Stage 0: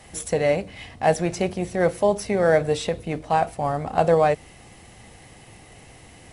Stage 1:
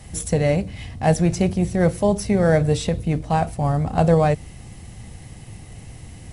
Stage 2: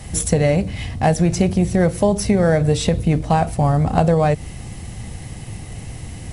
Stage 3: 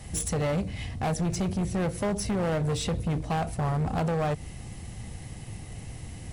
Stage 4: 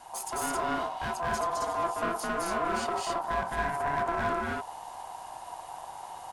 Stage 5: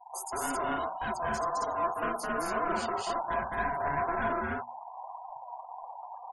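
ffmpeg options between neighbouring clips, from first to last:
-af "bass=f=250:g=14,treble=f=4k:g=5,volume=-1.5dB"
-af "acompressor=threshold=-19dB:ratio=6,volume=7dB"
-af "asoftclip=type=hard:threshold=-16dB,volume=-8dB"
-filter_complex "[0:a]aeval=exprs='val(0)*sin(2*PI*850*n/s)':c=same,asplit=2[a][b];[b]aecho=0:1:212.8|268.2:0.891|0.891[c];[a][c]amix=inputs=2:normalize=0,volume=-4dB"
-af "flanger=delay=3.8:depth=9.9:regen=47:speed=1.9:shape=sinusoidal,afftfilt=real='re*gte(hypot(re,im),0.00708)':imag='im*gte(hypot(re,im),0.00708)':win_size=1024:overlap=0.75,bandreject=f=60:t=h:w=6,bandreject=f=120:t=h:w=6,bandreject=f=180:t=h:w=6,bandreject=f=240:t=h:w=6,volume=3dB"

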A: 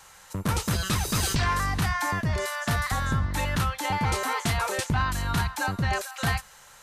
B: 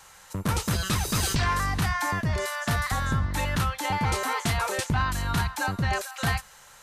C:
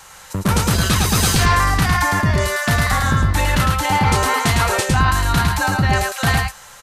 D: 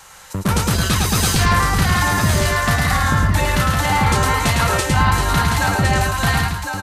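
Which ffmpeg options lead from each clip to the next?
-af anull
-af "aecho=1:1:106:0.668,volume=8.5dB"
-af "aecho=1:1:1059:0.531,volume=-1dB"

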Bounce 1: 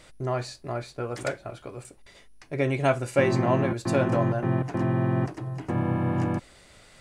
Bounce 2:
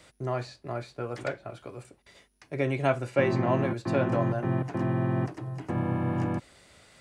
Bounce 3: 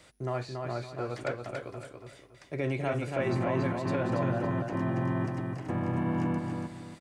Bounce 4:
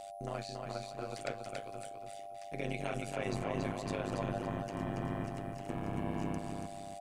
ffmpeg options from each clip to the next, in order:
-filter_complex "[0:a]highpass=58,acrossover=split=240|1000|4600[a][b][c][d];[d]acompressor=threshold=-56dB:ratio=6[e];[a][b][c][e]amix=inputs=4:normalize=0,volume=-2.5dB"
-filter_complex "[0:a]alimiter=limit=-20dB:level=0:latency=1:release=13,asplit=2[a][b];[b]aecho=0:1:281|562|843|1124:0.596|0.197|0.0649|0.0214[c];[a][c]amix=inputs=2:normalize=0,volume=-1.5dB"
-af "aeval=exprs='val(0)+0.0158*sin(2*PI*690*n/s)':c=same,aexciter=amount=2.4:drive=5.9:freq=2.5k,tremolo=f=100:d=0.947,volume=-4dB"

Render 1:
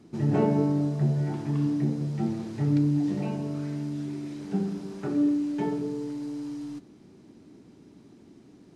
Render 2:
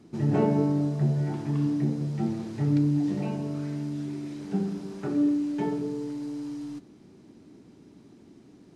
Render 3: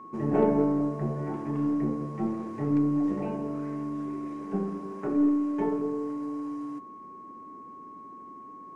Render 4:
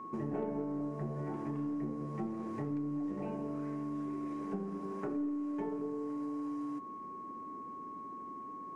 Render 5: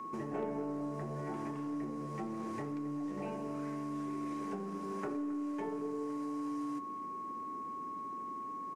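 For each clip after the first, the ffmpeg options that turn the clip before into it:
-af anull
-af "equalizer=f=125:t=o:w=1:g=-4,equalizer=f=250:t=o:w=1:g=6,equalizer=f=500:t=o:w=1:g=9,equalizer=f=1k:t=o:w=1:g=5,equalizer=f=2k:t=o:w=1:g=6,equalizer=f=4k:t=o:w=1:g=-9,aeval=exprs='val(0)+0.0158*sin(2*PI*1100*n/s)':c=same,aeval=exprs='0.631*(cos(1*acos(clip(val(0)/0.631,-1,1)))-cos(1*PI/2))+0.0158*(cos(6*acos(clip(val(0)/0.631,-1,1)))-cos(6*PI/2))':c=same,volume=-7dB"
-af "acompressor=threshold=-36dB:ratio=4"
-filter_complex "[0:a]highshelf=f=2k:g=9.5,acrossover=split=350|660[a][b][c];[a]alimiter=level_in=14dB:limit=-24dB:level=0:latency=1,volume=-14dB[d];[d][b][c]amix=inputs=3:normalize=0,asplit=2[e][f];[f]adelay=268.2,volume=-16dB,highshelf=f=4k:g=-6.04[g];[e][g]amix=inputs=2:normalize=0"

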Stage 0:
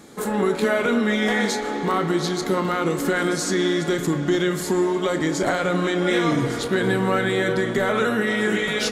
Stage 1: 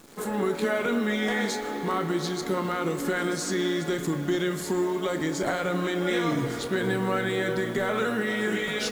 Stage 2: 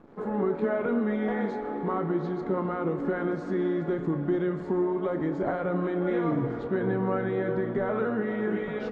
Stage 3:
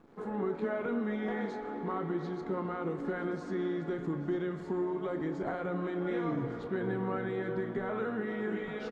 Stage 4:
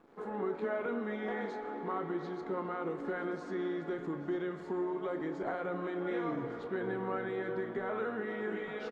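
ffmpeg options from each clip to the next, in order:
-af "acrusher=bits=8:dc=4:mix=0:aa=0.000001,volume=-5.5dB"
-af "lowpass=1.1k"
-af "highshelf=f=3.1k:g=10,bandreject=f=580:w=15,aecho=1:1:834:0.141,volume=-6.5dB"
-af "bass=f=250:g=-9,treble=f=4k:g=-3"

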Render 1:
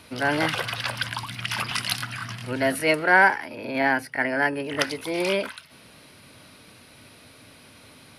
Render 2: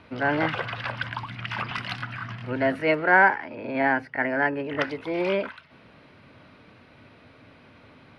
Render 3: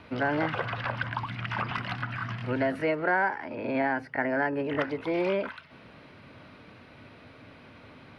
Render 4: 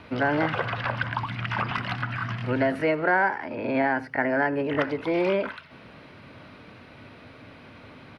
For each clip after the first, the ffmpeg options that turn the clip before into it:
-af "lowpass=2.2k"
-filter_complex "[0:a]acrossover=split=1700|4200[a][b][c];[a]acompressor=threshold=-26dB:ratio=4[d];[b]acompressor=threshold=-43dB:ratio=4[e];[c]acompressor=threshold=-57dB:ratio=4[f];[d][e][f]amix=inputs=3:normalize=0,volume=1.5dB"
-af "aecho=1:1:83:0.1,volume=3.5dB"

